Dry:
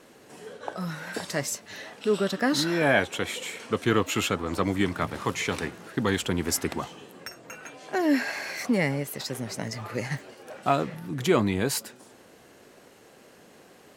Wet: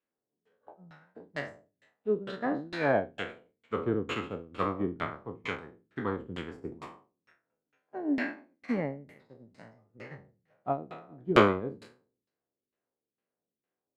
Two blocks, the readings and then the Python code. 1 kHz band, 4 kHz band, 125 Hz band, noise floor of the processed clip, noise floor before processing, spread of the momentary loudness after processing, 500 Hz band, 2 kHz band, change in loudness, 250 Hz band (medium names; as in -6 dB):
-3.5 dB, -12.0 dB, -8.5 dB, under -85 dBFS, -54 dBFS, 19 LU, -4.0 dB, -7.5 dB, -4.5 dB, -6.0 dB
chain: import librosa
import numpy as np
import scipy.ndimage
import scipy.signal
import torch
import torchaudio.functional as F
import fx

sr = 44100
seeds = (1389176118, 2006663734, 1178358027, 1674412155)

y = fx.spec_trails(x, sr, decay_s=1.31)
y = fx.dynamic_eq(y, sr, hz=5700.0, q=3.0, threshold_db=-47.0, ratio=4.0, max_db=-7)
y = fx.filter_lfo_lowpass(y, sr, shape='saw_down', hz=2.2, low_hz=220.0, high_hz=3000.0, q=0.99)
y = fx.high_shelf(y, sr, hz=2600.0, db=9.0)
y = fx.upward_expand(y, sr, threshold_db=-42.0, expansion=2.5)